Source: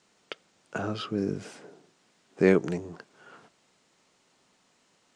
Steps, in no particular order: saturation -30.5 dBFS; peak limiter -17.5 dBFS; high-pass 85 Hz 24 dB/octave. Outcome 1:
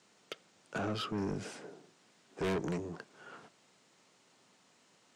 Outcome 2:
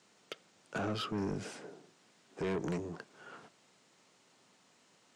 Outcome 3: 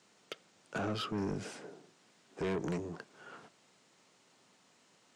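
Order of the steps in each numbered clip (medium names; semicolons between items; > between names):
high-pass > saturation > peak limiter; peak limiter > high-pass > saturation; high-pass > peak limiter > saturation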